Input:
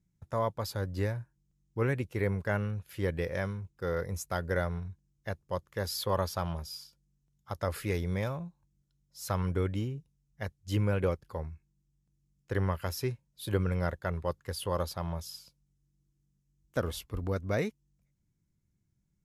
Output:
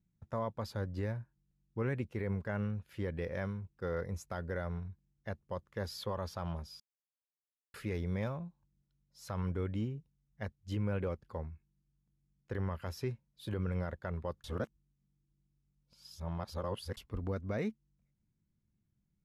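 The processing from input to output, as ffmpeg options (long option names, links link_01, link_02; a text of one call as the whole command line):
ffmpeg -i in.wav -filter_complex "[0:a]asplit=5[link_01][link_02][link_03][link_04][link_05];[link_01]atrim=end=6.8,asetpts=PTS-STARTPTS,afade=type=out:start_time=6.796:duration=0.004:curve=hsin[link_06];[link_02]atrim=start=6.8:end=7.74,asetpts=PTS-STARTPTS,volume=0[link_07];[link_03]atrim=start=7.74:end=14.442,asetpts=PTS-STARTPTS,afade=type=in:duration=0.004:curve=hsin[link_08];[link_04]atrim=start=14.438:end=16.972,asetpts=PTS-STARTPTS,areverse[link_09];[link_05]atrim=start=16.968[link_10];[link_06][link_07][link_08]concat=n=3:v=0:a=1[link_11];[link_11][link_09]acrossfade=duration=0.004:curve1=hsin:curve2=hsin[link_12];[link_12][link_10]acrossfade=duration=0.004:curve1=hsin:curve2=hsin,equalizer=frequency=220:width_type=o:width=0.24:gain=6,alimiter=limit=-22.5dB:level=0:latency=1:release=42,aemphasis=mode=reproduction:type=50kf,volume=-3.5dB" out.wav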